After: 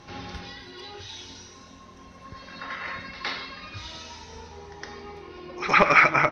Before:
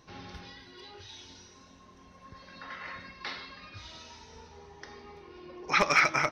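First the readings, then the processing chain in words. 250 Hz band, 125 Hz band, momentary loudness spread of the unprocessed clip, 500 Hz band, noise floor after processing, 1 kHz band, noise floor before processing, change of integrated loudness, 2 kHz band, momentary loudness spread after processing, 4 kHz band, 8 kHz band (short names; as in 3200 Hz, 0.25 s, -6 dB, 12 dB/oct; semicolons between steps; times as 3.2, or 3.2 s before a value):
+7.5 dB, +7.5 dB, 24 LU, +7.5 dB, -48 dBFS, +7.5 dB, -56 dBFS, +6.0 dB, +6.5 dB, 24 LU, +3.0 dB, -1.5 dB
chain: pre-echo 0.113 s -14.5 dB; treble ducked by the level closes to 2800 Hz, closed at -27 dBFS; gain +7.5 dB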